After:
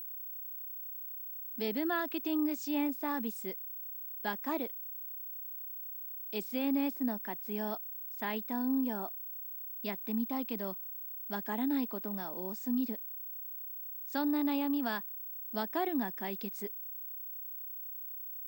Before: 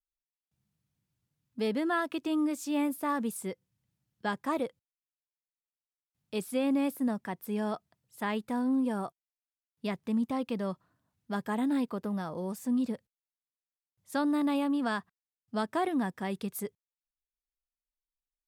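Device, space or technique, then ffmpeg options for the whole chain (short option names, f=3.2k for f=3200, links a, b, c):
old television with a line whistle: -af "highpass=f=220:w=0.5412,highpass=f=220:w=1.3066,equalizer=f=510:t=q:w=4:g=-7,equalizer=f=1.2k:t=q:w=4:g=-7,equalizer=f=5.2k:t=q:w=4:g=3,lowpass=f=7.3k:w=0.5412,lowpass=f=7.3k:w=1.3066,aeval=exprs='val(0)+0.0126*sin(2*PI*15734*n/s)':c=same,volume=-2dB"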